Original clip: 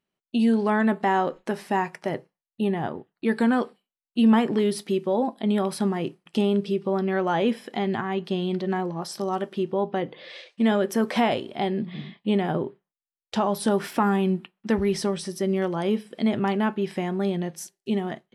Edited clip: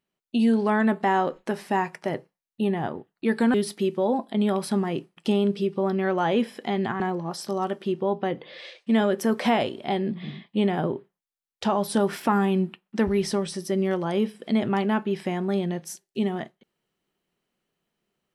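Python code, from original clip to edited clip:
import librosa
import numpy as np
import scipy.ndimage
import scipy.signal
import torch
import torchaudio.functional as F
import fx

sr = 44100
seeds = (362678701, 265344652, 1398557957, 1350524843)

y = fx.edit(x, sr, fx.cut(start_s=3.54, length_s=1.09),
    fx.cut(start_s=8.09, length_s=0.62), tone=tone)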